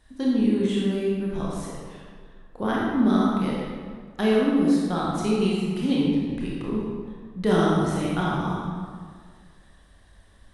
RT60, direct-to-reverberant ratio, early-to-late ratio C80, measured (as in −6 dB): 1.8 s, −5.0 dB, 0.5 dB